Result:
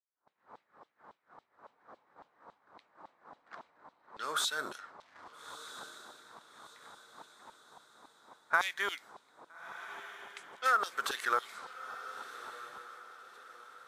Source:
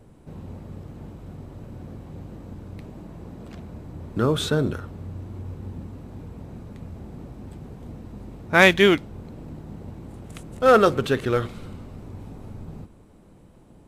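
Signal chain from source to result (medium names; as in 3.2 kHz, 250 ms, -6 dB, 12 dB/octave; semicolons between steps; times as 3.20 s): 5.00–7.51 s: short-mantissa float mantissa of 2-bit; LFO high-pass saw down 3.6 Hz 930–3500 Hz; compression 6:1, threshold -26 dBFS, peak gain reduction 17.5 dB; level-controlled noise filter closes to 2 kHz, open at -32.5 dBFS; expander -50 dBFS; peaking EQ 2.7 kHz -14 dB 0.95 oct; echo that smears into a reverb 1309 ms, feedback 42%, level -13 dB; trim +3 dB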